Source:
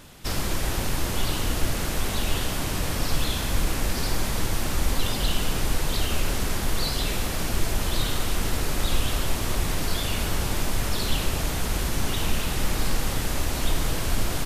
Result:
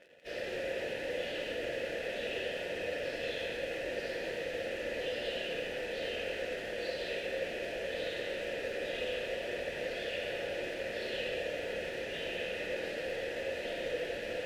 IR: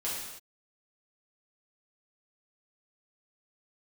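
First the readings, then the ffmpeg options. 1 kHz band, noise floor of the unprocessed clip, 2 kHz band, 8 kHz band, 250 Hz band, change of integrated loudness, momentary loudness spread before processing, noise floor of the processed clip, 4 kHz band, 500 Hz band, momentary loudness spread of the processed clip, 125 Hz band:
−15.0 dB, −28 dBFS, −4.5 dB, −24.5 dB, −14.5 dB, −9.5 dB, 1 LU, −40 dBFS, −11.5 dB, +0.5 dB, 2 LU, −25.5 dB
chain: -filter_complex "[0:a]asplit=2[link_01][link_02];[link_02]adynamicsmooth=sensitivity=7:basefreq=3800,volume=-1dB[link_03];[link_01][link_03]amix=inputs=2:normalize=0[link_04];[1:a]atrim=start_sample=2205[link_05];[link_04][link_05]afir=irnorm=-1:irlink=0,areverse,acompressor=mode=upward:threshold=-23dB:ratio=2.5,areverse,acrusher=bits=6:dc=4:mix=0:aa=0.000001,asplit=3[link_06][link_07][link_08];[link_06]bandpass=frequency=530:width_type=q:width=8,volume=0dB[link_09];[link_07]bandpass=frequency=1840:width_type=q:width=8,volume=-6dB[link_10];[link_08]bandpass=frequency=2480:width_type=q:width=8,volume=-9dB[link_11];[link_09][link_10][link_11]amix=inputs=3:normalize=0,highshelf=frequency=8900:gain=5.5,volume=-4dB"

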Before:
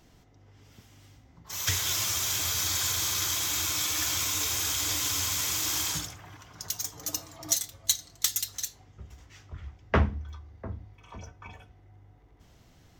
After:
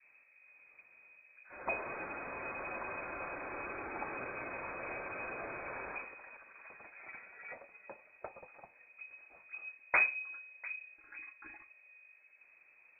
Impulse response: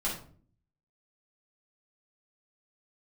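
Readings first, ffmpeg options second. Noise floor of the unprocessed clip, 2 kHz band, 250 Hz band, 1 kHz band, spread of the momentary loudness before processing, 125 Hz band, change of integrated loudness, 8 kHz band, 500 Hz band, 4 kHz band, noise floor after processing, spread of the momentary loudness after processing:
−58 dBFS, −0.5 dB, −11.0 dB, −3.5 dB, 18 LU, −24.5 dB, −12.0 dB, below −40 dB, −3.5 dB, below −40 dB, −65 dBFS, 19 LU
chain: -af "adynamicequalizer=threshold=0.00224:dfrequency=2000:dqfactor=2.1:tfrequency=2000:tqfactor=2.1:attack=5:release=100:ratio=0.375:range=3.5:mode=boostabove:tftype=bell,lowpass=frequency=2200:width_type=q:width=0.5098,lowpass=frequency=2200:width_type=q:width=0.6013,lowpass=frequency=2200:width_type=q:width=0.9,lowpass=frequency=2200:width_type=q:width=2.563,afreqshift=-2600,volume=-6dB"

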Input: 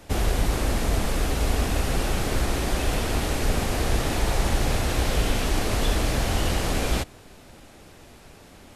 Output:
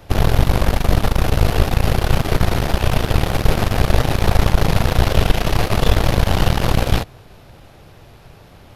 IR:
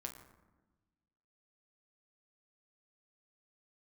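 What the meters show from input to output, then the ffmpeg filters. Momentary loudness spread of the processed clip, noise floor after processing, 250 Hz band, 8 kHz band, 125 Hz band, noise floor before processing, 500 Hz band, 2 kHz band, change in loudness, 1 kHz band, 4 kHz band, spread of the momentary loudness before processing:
2 LU, −44 dBFS, +6.5 dB, −0.5 dB, +10.0 dB, −49 dBFS, +7.0 dB, +5.5 dB, +7.0 dB, +7.5 dB, +5.0 dB, 1 LU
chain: -af "equalizer=frequency=125:width_type=o:width=1:gain=7,equalizer=frequency=250:width_type=o:width=1:gain=-7,equalizer=frequency=2000:width_type=o:width=1:gain=-3,equalizer=frequency=8000:width_type=o:width=1:gain=-12,aeval=exprs='0.316*(cos(1*acos(clip(val(0)/0.316,-1,1)))-cos(1*PI/2))+0.126*(cos(4*acos(clip(val(0)/0.316,-1,1)))-cos(4*PI/2))':channel_layout=same,volume=5dB"

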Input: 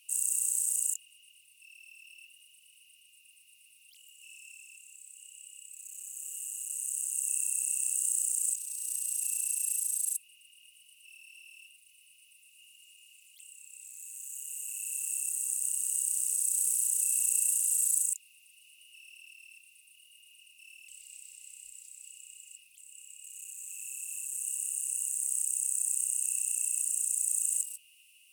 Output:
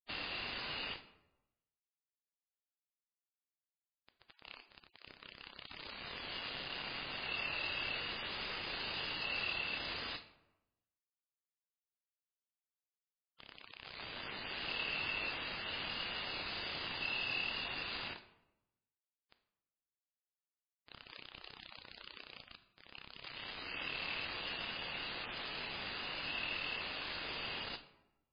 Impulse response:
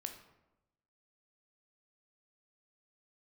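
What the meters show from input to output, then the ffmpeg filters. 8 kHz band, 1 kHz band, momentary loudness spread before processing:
below −40 dB, can't be measured, 21 LU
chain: -filter_complex "[0:a]aeval=exprs='val(0)*gte(abs(val(0)),0.00891)':channel_layout=same,asplit=2[link_01][link_02];[1:a]atrim=start_sample=2205,lowpass=6200[link_03];[link_02][link_03]afir=irnorm=-1:irlink=0,volume=5dB[link_04];[link_01][link_04]amix=inputs=2:normalize=0,volume=7.5dB" -ar 11025 -c:a libmp3lame -b:a 16k

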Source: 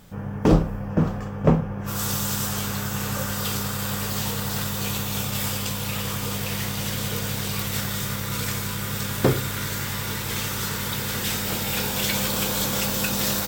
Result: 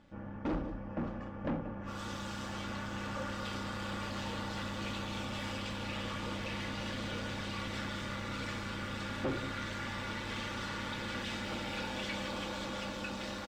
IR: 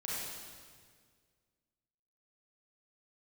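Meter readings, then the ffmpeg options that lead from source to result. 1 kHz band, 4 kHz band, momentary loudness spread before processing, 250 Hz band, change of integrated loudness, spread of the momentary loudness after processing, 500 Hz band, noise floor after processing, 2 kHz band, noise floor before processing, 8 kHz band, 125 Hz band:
−9.0 dB, −12.5 dB, 5 LU, −12.0 dB, −14.0 dB, 3 LU, −12.0 dB, −43 dBFS, −9.0 dB, −31 dBFS, −23.0 dB, −16.0 dB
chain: -af "tremolo=f=130:d=0.571,lowshelf=frequency=70:gain=-6.5,aecho=1:1:183:0.126,dynaudnorm=framelen=420:gausssize=9:maxgain=5dB,aecho=1:1:3.5:0.52,asoftclip=type=tanh:threshold=-22dB,lowpass=3300,volume=-8dB"

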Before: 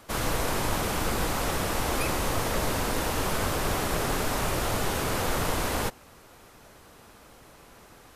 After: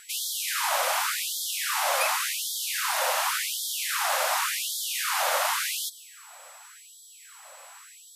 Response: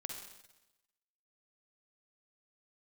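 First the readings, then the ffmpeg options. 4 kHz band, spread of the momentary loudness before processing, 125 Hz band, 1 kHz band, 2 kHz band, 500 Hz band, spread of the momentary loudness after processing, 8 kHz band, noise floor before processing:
+5.5 dB, 1 LU, below −40 dB, +1.5 dB, +3.5 dB, −4.5 dB, 21 LU, +5.5 dB, −53 dBFS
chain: -filter_complex "[0:a]aeval=exprs='val(0)+0.00158*sin(2*PI*7800*n/s)':channel_layout=same,asplit=2[link_01][link_02];[1:a]atrim=start_sample=2205,adelay=144[link_03];[link_02][link_03]afir=irnorm=-1:irlink=0,volume=-17dB[link_04];[link_01][link_04]amix=inputs=2:normalize=0,afftfilt=real='re*gte(b*sr/1024,480*pow(3200/480,0.5+0.5*sin(2*PI*0.89*pts/sr)))':imag='im*gte(b*sr/1024,480*pow(3200/480,0.5+0.5*sin(2*PI*0.89*pts/sr)))':win_size=1024:overlap=0.75,volume=5.5dB"

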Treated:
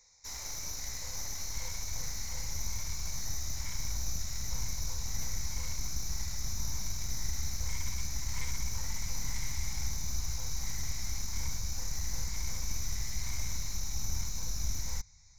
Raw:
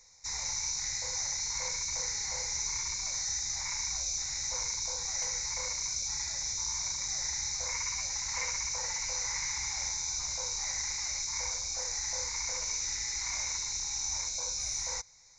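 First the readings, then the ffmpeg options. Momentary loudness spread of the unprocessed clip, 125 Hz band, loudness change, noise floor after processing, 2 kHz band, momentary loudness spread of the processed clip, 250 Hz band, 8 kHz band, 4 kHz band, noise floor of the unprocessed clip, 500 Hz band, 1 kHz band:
1 LU, +11.5 dB, −5.5 dB, −41 dBFS, −6.5 dB, 1 LU, can't be measured, −7.0 dB, −7.0 dB, −37 dBFS, −6.5 dB, −6.0 dB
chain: -af "aeval=exprs='clip(val(0),-1,0.00944)':channel_layout=same,asubboost=boost=12:cutoff=120,volume=-4dB"

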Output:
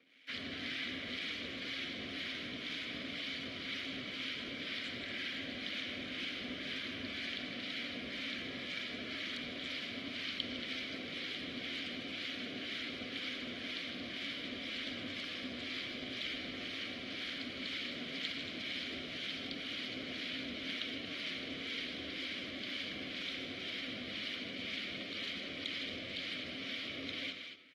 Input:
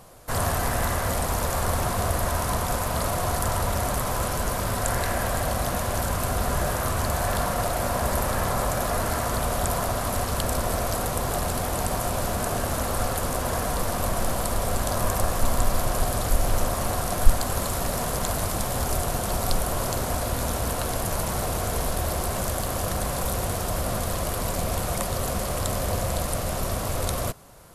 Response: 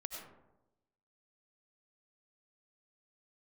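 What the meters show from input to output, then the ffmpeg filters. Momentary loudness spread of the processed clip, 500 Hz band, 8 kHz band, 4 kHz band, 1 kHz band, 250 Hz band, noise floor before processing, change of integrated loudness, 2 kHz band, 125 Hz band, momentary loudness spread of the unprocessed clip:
2 LU, −21.5 dB, −31.0 dB, −2.5 dB, −27.0 dB, −11.5 dB, −29 dBFS, −13.5 dB, −6.5 dB, −28.0 dB, 2 LU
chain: -filter_complex "[0:a]acrossover=split=8900[link_01][link_02];[link_02]acompressor=threshold=-47dB:ratio=4:attack=1:release=60[link_03];[link_01][link_03]amix=inputs=2:normalize=0,highpass=55,equalizer=frequency=4400:width_type=o:width=1.7:gain=11,aexciter=amount=8.2:drive=4.1:freq=11000,acrossover=split=420|3000[link_04][link_05][link_06];[link_05]acompressor=threshold=-31dB:ratio=10[link_07];[link_04][link_07][link_06]amix=inputs=3:normalize=0,acrusher=bits=5:mix=0:aa=0.5,acrossover=split=1100[link_08][link_09];[link_08]aeval=exprs='val(0)*(1-0.7/2+0.7/2*cos(2*PI*2*n/s))':channel_layout=same[link_10];[link_09]aeval=exprs='val(0)*(1-0.7/2-0.7/2*cos(2*PI*2*n/s))':channel_layout=same[link_11];[link_10][link_11]amix=inputs=2:normalize=0,asplit=3[link_12][link_13][link_14];[link_12]bandpass=frequency=270:width_type=q:width=8,volume=0dB[link_15];[link_13]bandpass=frequency=2290:width_type=q:width=8,volume=-6dB[link_16];[link_14]bandpass=frequency=3010:width_type=q:width=8,volume=-9dB[link_17];[link_15][link_16][link_17]amix=inputs=3:normalize=0,acrossover=split=510 4300:gain=0.224 1 0.0794[link_18][link_19][link_20];[link_18][link_19][link_20]amix=inputs=3:normalize=0,aecho=1:1:41|157|224|230:0.112|0.316|0.106|0.355,asplit=2[link_21][link_22];[1:a]atrim=start_sample=2205,afade=type=out:start_time=0.45:duration=0.01,atrim=end_sample=20286,lowshelf=frequency=75:gain=-8.5[link_23];[link_22][link_23]afir=irnorm=-1:irlink=0,volume=-3dB[link_24];[link_21][link_24]amix=inputs=2:normalize=0,volume=5.5dB" -ar 48000 -c:a aac -b:a 32k

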